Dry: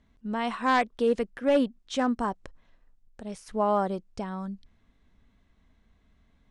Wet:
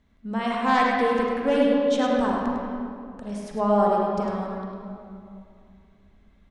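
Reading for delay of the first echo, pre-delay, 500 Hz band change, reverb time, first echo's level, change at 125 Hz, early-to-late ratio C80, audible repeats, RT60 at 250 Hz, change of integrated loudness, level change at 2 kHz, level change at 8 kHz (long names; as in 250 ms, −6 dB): 102 ms, 37 ms, +5.0 dB, 2.5 s, −6.0 dB, +5.5 dB, −1.0 dB, 1, 2.9 s, +4.5 dB, +4.5 dB, can't be measured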